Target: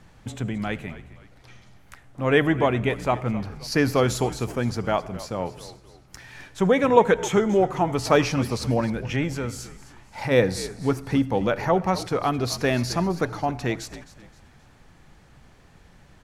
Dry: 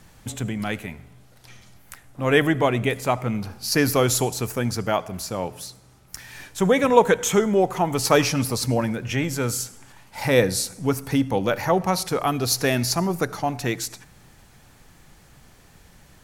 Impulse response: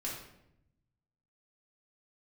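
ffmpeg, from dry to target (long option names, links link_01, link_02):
-filter_complex "[0:a]aemphasis=mode=reproduction:type=50fm,asplit=3[link_01][link_02][link_03];[link_01]afade=type=out:start_time=9.37:duration=0.02[link_04];[link_02]acompressor=threshold=-27dB:ratio=2,afade=type=in:start_time=9.37:duration=0.02,afade=type=out:start_time=10.3:duration=0.02[link_05];[link_03]afade=type=in:start_time=10.3:duration=0.02[link_06];[link_04][link_05][link_06]amix=inputs=3:normalize=0,asplit=4[link_07][link_08][link_09][link_10];[link_08]adelay=262,afreqshift=-69,volume=-16dB[link_11];[link_09]adelay=524,afreqshift=-138,volume=-24.4dB[link_12];[link_10]adelay=786,afreqshift=-207,volume=-32.8dB[link_13];[link_07][link_11][link_12][link_13]amix=inputs=4:normalize=0,volume=-1dB"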